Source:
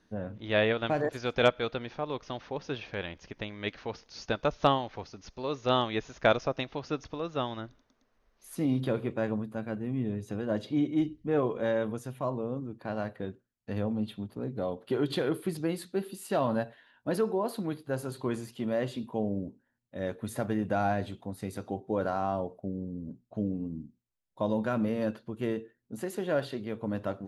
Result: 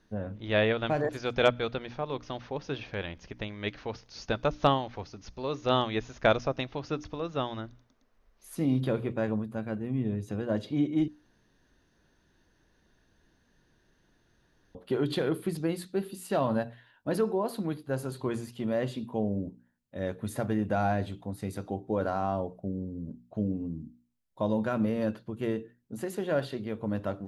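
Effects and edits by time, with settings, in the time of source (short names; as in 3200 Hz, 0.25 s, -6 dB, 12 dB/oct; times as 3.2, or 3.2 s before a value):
11.08–14.75 room tone
whole clip: low shelf 140 Hz +6 dB; notches 60/120/180/240/300 Hz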